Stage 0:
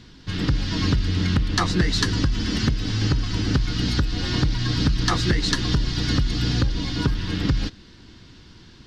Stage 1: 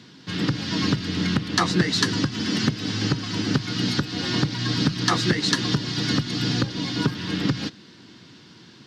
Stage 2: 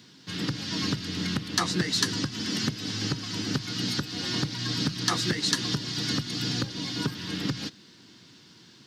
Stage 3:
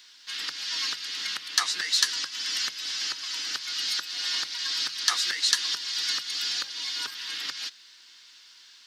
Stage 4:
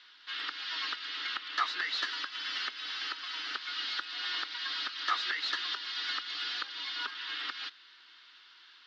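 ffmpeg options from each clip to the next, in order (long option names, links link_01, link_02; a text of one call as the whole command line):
ffmpeg -i in.wav -af "highpass=frequency=130:width=0.5412,highpass=frequency=130:width=1.3066,volume=1.5dB" out.wav
ffmpeg -i in.wav -af "aemphasis=mode=production:type=50kf,volume=-7dB" out.wav
ffmpeg -i in.wav -af "highpass=1500,volume=3.5dB" out.wav
ffmpeg -i in.wav -af "asoftclip=type=tanh:threshold=-22dB,highpass=frequency=260:width=0.5412,highpass=frequency=260:width=1.3066,equalizer=frequency=520:width_type=q:width=4:gain=-5,equalizer=frequency=1300:width_type=q:width=4:gain=6,equalizer=frequency=2400:width_type=q:width=4:gain=-3,lowpass=frequency=3600:width=0.5412,lowpass=frequency=3600:width=1.3066" out.wav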